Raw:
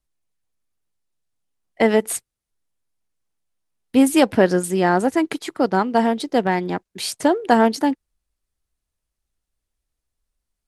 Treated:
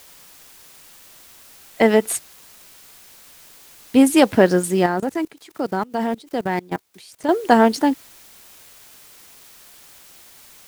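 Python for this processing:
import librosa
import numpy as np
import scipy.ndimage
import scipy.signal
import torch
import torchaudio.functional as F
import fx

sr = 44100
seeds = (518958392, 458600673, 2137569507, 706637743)

y = fx.quant_dither(x, sr, seeds[0], bits=8, dither='triangular')
y = fx.level_steps(y, sr, step_db=23, at=(4.86, 7.29))
y = F.gain(torch.from_numpy(y), 1.5).numpy()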